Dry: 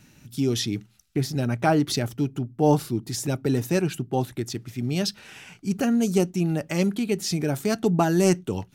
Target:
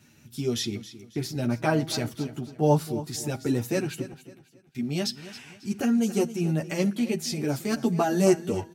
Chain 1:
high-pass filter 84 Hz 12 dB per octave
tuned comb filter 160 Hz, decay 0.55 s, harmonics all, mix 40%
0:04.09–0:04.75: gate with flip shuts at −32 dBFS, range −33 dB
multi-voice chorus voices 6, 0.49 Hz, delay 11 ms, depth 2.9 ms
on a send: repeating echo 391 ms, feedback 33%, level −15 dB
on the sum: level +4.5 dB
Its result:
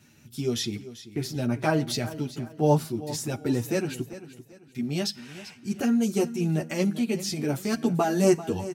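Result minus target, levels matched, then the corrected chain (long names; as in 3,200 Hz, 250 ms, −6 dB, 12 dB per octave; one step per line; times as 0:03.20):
echo 119 ms late
high-pass filter 84 Hz 12 dB per octave
tuned comb filter 160 Hz, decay 0.55 s, harmonics all, mix 40%
0:04.09–0:04.75: gate with flip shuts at −32 dBFS, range −33 dB
multi-voice chorus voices 6, 0.49 Hz, delay 11 ms, depth 2.9 ms
on a send: repeating echo 272 ms, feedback 33%, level −15 dB
on the sum: level +4.5 dB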